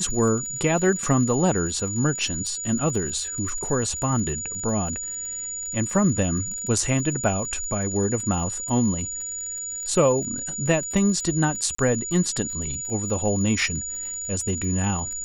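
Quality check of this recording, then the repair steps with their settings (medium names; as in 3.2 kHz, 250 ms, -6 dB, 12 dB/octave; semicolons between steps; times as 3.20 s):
crackle 52 per s -33 dBFS
whine 6.9 kHz -29 dBFS
11.75–11.78 s: dropout 34 ms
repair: de-click; band-stop 6.9 kHz, Q 30; interpolate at 11.75 s, 34 ms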